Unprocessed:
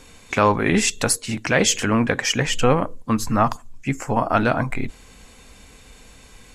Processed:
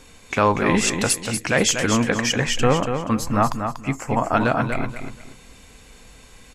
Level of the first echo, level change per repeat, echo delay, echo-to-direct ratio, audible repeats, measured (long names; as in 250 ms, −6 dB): −7.0 dB, −11.5 dB, 239 ms, −6.5 dB, 3